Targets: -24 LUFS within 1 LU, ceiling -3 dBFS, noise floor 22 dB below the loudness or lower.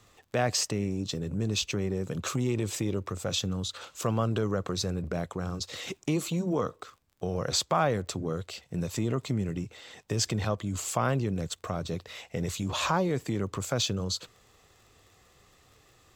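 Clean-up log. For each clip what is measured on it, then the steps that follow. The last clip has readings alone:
tick rate 29 per s; loudness -31.0 LUFS; peak level -13.5 dBFS; loudness target -24.0 LUFS
-> de-click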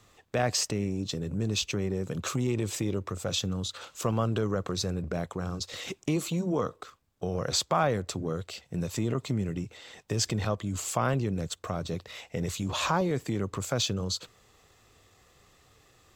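tick rate 0.25 per s; loudness -31.0 LUFS; peak level -13.5 dBFS; loudness target -24.0 LUFS
-> trim +7 dB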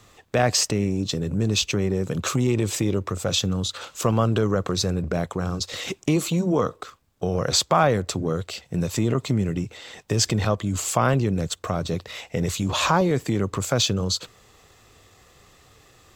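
loudness -24.0 LUFS; peak level -6.5 dBFS; noise floor -55 dBFS

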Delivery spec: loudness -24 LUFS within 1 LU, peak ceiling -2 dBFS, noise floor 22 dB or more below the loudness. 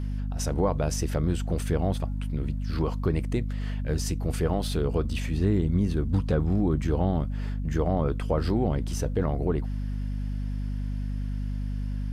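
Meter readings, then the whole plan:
hum 50 Hz; highest harmonic 250 Hz; hum level -27 dBFS; loudness -28.5 LUFS; peak level -12.5 dBFS; loudness target -24.0 LUFS
-> de-hum 50 Hz, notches 5; trim +4.5 dB

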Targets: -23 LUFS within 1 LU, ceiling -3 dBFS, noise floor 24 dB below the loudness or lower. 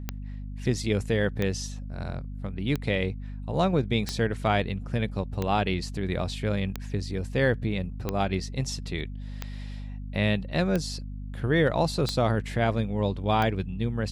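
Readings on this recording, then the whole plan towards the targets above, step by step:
clicks found 11; hum 50 Hz; highest harmonic 250 Hz; hum level -34 dBFS; loudness -28.0 LUFS; peak level -11.5 dBFS; loudness target -23.0 LUFS
-> de-click; de-hum 50 Hz, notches 5; trim +5 dB

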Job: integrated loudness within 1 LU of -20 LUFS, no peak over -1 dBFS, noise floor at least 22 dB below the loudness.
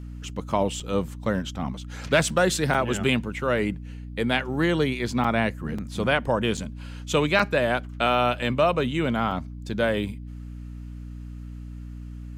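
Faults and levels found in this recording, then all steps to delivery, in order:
dropouts 7; longest dropout 4.7 ms; hum 60 Hz; highest harmonic 300 Hz; hum level -35 dBFS; loudness -25.0 LUFS; peak level -9.0 dBFS; loudness target -20.0 LUFS
-> interpolate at 0.80/2.74/5.24/5.78/6.57/7.39/9.31 s, 4.7 ms; de-hum 60 Hz, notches 5; trim +5 dB

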